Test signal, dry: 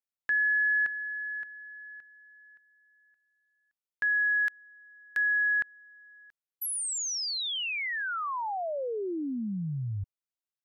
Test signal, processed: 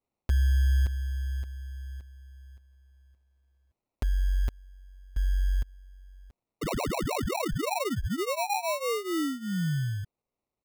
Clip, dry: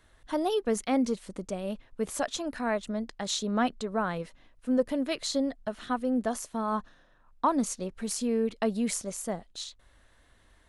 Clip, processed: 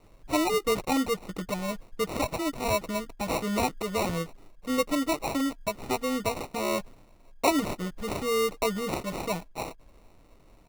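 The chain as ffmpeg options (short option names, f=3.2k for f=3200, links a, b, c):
-filter_complex "[0:a]aecho=1:1:6.4:0.83,asplit=2[a][b];[b]acompressor=threshold=-39dB:ratio=6:attack=37:release=67:detection=rms,volume=-1.5dB[c];[a][c]amix=inputs=2:normalize=0,acrusher=samples=27:mix=1:aa=0.000001,volume=-2dB"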